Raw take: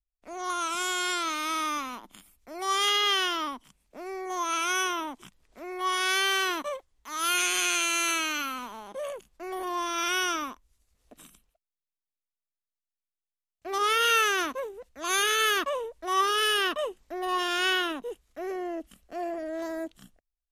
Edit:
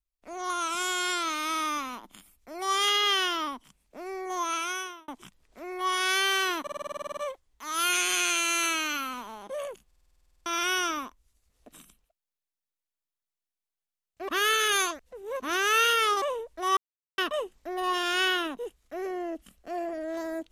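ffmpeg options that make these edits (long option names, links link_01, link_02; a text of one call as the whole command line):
ffmpeg -i in.wav -filter_complex "[0:a]asplit=29[link_01][link_02][link_03][link_04][link_05][link_06][link_07][link_08][link_09][link_10][link_11][link_12][link_13][link_14][link_15][link_16][link_17][link_18][link_19][link_20][link_21][link_22][link_23][link_24][link_25][link_26][link_27][link_28][link_29];[link_01]atrim=end=5.08,asetpts=PTS-STARTPTS,afade=type=out:start_time=4.43:duration=0.65[link_30];[link_02]atrim=start=5.08:end=6.672,asetpts=PTS-STARTPTS,afade=type=in:duration=0.004:curve=hsin[link_31];[link_03]atrim=start=6.618:end=6.672[link_32];[link_04]atrim=start=6.618:end=6.672[link_33];[link_05]atrim=start=6.618:end=6.672[link_34];[link_06]atrim=start=6.618:end=6.672[link_35];[link_07]atrim=start=6.618:end=6.672[link_36];[link_08]atrim=start=6.618:end=6.672[link_37];[link_09]atrim=start=6.618:end=6.672[link_38];[link_10]atrim=start=6.618:end=6.672[link_39];[link_11]atrim=start=6.618:end=6.672[link_40];[link_12]atrim=start=6.618:end=6.672[link_41];[link_13]atrim=start=6.618:end=9.362[link_42];[link_14]atrim=start=9.308:end=9.362[link_43];[link_15]atrim=start=9.308:end=9.362[link_44];[link_16]atrim=start=9.308:end=9.362[link_45];[link_17]atrim=start=9.308:end=9.362[link_46];[link_18]atrim=start=9.308:end=9.362[link_47];[link_19]atrim=start=9.308:end=9.362[link_48];[link_20]atrim=start=9.308:end=9.362[link_49];[link_21]atrim=start=9.308:end=9.362[link_50];[link_22]atrim=start=9.308:end=9.362[link_51];[link_23]atrim=start=9.308:end=9.362[link_52];[link_24]atrim=start=9.308:end=9.362[link_53];[link_25]atrim=start=9.908:end=13.732[link_54];[link_26]atrim=start=13.728:end=15.672,asetpts=PTS-STARTPTS,areverse[link_55];[link_27]atrim=start=15.668:end=16.22,asetpts=PTS-STARTPTS,afade=type=out:start_time=0.548:duration=0.004:curve=hsin[link_56];[link_28]atrim=start=16.22:end=16.63,asetpts=PTS-STARTPTS,volume=0[link_57];[link_29]atrim=start=16.63,asetpts=PTS-STARTPTS,afade=type=in:duration=0.004:curve=hsin[link_58];[link_30][link_31]concat=n=2:v=0:a=1[link_59];[link_59][link_32]acrossfade=duration=0.004:curve1=hsin:curve2=hsin[link_60];[link_60][link_33]acrossfade=duration=0.004:curve1=hsin:curve2=hsin[link_61];[link_61][link_34]acrossfade=duration=0.004:curve1=hsin:curve2=hsin[link_62];[link_62][link_35]acrossfade=duration=0.004:curve1=hsin:curve2=hsin[link_63];[link_63][link_36]acrossfade=duration=0.004:curve1=hsin:curve2=hsin[link_64];[link_64][link_37]acrossfade=duration=0.004:curve1=hsin:curve2=hsin[link_65];[link_65][link_38]acrossfade=duration=0.004:curve1=hsin:curve2=hsin[link_66];[link_66][link_39]acrossfade=duration=0.004:curve1=hsin:curve2=hsin[link_67];[link_67][link_40]acrossfade=duration=0.004:curve1=hsin:curve2=hsin[link_68];[link_68][link_41]acrossfade=duration=0.004:curve1=hsin:curve2=hsin[link_69];[link_69][link_42]acrossfade=duration=0.004:curve1=hsin:curve2=hsin[link_70];[link_70][link_43]acrossfade=duration=0.004:curve1=hsin:curve2=hsin[link_71];[link_71][link_44]acrossfade=duration=0.004:curve1=hsin:curve2=hsin[link_72];[link_72][link_45]acrossfade=duration=0.004:curve1=hsin:curve2=hsin[link_73];[link_73][link_46]acrossfade=duration=0.004:curve1=hsin:curve2=hsin[link_74];[link_74][link_47]acrossfade=duration=0.004:curve1=hsin:curve2=hsin[link_75];[link_75][link_48]acrossfade=duration=0.004:curve1=hsin:curve2=hsin[link_76];[link_76][link_49]acrossfade=duration=0.004:curve1=hsin:curve2=hsin[link_77];[link_77][link_50]acrossfade=duration=0.004:curve1=hsin:curve2=hsin[link_78];[link_78][link_51]acrossfade=duration=0.004:curve1=hsin:curve2=hsin[link_79];[link_79][link_52]acrossfade=duration=0.004:curve1=hsin:curve2=hsin[link_80];[link_80][link_53]acrossfade=duration=0.004:curve1=hsin:curve2=hsin[link_81];[link_81][link_54]acrossfade=duration=0.004:curve1=hsin:curve2=hsin[link_82];[link_82][link_55]acrossfade=duration=0.004:curve1=hsin:curve2=hsin[link_83];[link_56][link_57][link_58]concat=n=3:v=0:a=1[link_84];[link_83][link_84]acrossfade=duration=0.004:curve1=hsin:curve2=hsin" out.wav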